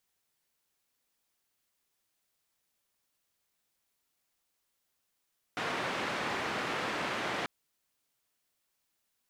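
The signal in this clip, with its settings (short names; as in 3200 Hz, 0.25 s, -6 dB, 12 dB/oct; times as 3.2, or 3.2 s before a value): noise band 150–1900 Hz, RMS -34.5 dBFS 1.89 s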